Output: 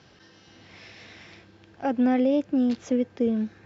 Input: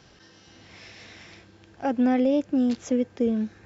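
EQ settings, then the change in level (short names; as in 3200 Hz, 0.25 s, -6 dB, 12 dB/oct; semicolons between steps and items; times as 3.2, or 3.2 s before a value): HPF 69 Hz; air absorption 140 m; high shelf 4200 Hz +6.5 dB; 0.0 dB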